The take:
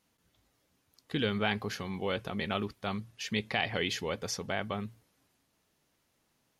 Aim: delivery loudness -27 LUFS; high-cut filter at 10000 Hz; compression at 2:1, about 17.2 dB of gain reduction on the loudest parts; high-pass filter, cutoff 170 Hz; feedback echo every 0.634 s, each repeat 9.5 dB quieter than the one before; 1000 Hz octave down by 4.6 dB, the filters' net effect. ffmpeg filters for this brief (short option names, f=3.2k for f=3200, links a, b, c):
-af "highpass=170,lowpass=10k,equalizer=f=1k:t=o:g=-7,acompressor=threshold=-60dB:ratio=2,aecho=1:1:634|1268|1902|2536:0.335|0.111|0.0365|0.012,volume=24dB"